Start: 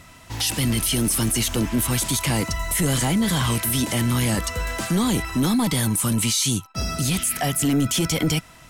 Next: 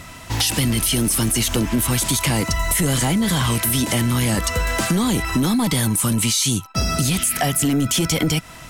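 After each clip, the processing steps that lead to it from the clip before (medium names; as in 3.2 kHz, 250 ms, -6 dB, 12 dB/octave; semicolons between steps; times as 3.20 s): compression, threshold -25 dBFS, peak gain reduction 7.5 dB; trim +8.5 dB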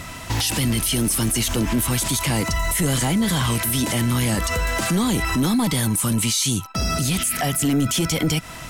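peak limiter -17.5 dBFS, peak gain reduction 9 dB; trim +3.5 dB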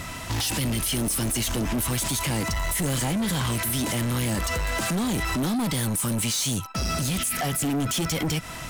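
saturation -22.5 dBFS, distortion -12 dB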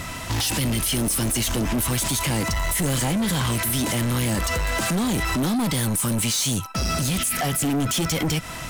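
feedback comb 520 Hz, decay 0.46 s, mix 40%; trim +7 dB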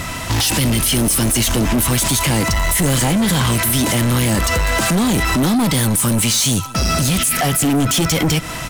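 delay 194 ms -20.5 dB; trim +7 dB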